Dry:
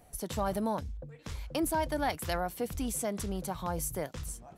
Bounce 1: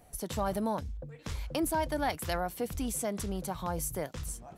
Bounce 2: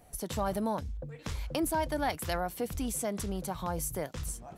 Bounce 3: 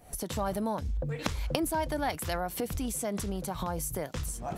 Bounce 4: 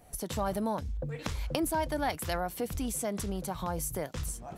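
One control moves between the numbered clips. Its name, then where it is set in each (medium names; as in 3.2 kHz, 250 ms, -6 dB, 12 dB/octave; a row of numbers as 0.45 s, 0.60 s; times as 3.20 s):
recorder AGC, rising by: 5.6 dB/s, 14 dB/s, 88 dB/s, 35 dB/s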